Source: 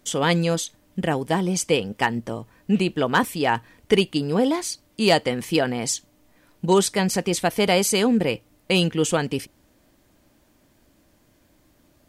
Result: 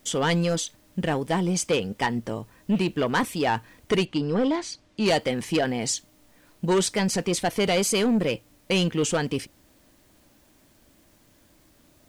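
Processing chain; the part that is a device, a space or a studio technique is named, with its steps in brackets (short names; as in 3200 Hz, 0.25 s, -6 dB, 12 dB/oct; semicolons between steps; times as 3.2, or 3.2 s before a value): compact cassette (soft clip -16 dBFS, distortion -12 dB; LPF 10000 Hz 12 dB/oct; wow and flutter; white noise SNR 38 dB); 4.05–5.06 air absorption 91 m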